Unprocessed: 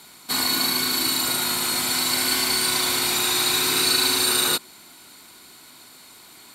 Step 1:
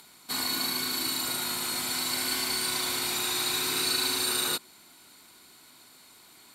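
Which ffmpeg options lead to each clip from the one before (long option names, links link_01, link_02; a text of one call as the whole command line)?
ffmpeg -i in.wav -af "acompressor=mode=upward:threshold=-45dB:ratio=2.5,volume=-7.5dB" out.wav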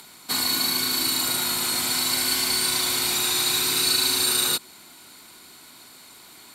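ffmpeg -i in.wav -filter_complex "[0:a]acrossover=split=150|3000[link_01][link_02][link_03];[link_02]acompressor=threshold=-36dB:ratio=6[link_04];[link_01][link_04][link_03]amix=inputs=3:normalize=0,volume=7dB" out.wav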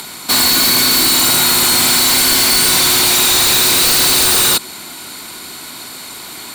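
ffmpeg -i in.wav -af "aeval=exprs='0.376*sin(PI/2*4.47*val(0)/0.376)':channel_layout=same" out.wav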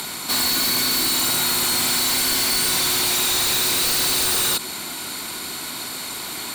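ffmpeg -i in.wav -af "alimiter=limit=-17dB:level=0:latency=1:release=18" out.wav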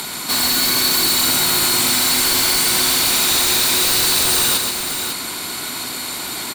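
ffmpeg -i in.wav -af "aecho=1:1:131|554:0.501|0.422,volume=2.5dB" out.wav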